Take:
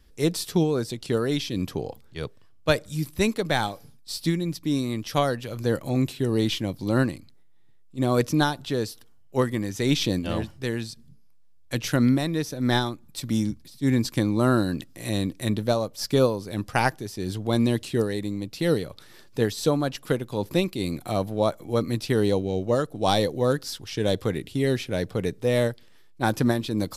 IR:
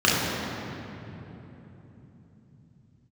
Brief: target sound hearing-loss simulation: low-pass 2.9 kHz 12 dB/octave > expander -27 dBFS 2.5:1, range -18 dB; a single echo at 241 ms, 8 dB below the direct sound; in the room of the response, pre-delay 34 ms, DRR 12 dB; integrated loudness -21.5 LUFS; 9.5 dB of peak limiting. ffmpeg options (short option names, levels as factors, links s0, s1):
-filter_complex "[0:a]alimiter=limit=0.188:level=0:latency=1,aecho=1:1:241:0.398,asplit=2[s0][s1];[1:a]atrim=start_sample=2205,adelay=34[s2];[s1][s2]afir=irnorm=-1:irlink=0,volume=0.0237[s3];[s0][s3]amix=inputs=2:normalize=0,lowpass=2900,agate=range=0.126:threshold=0.0447:ratio=2.5,volume=1.78"